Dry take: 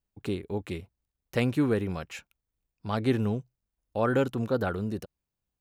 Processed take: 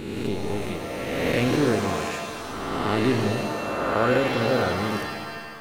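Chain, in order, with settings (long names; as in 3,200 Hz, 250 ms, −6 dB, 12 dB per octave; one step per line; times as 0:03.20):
peak hold with a rise ahead of every peak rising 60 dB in 1.96 s
reverb with rising layers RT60 1.6 s, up +7 semitones, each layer −2 dB, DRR 5 dB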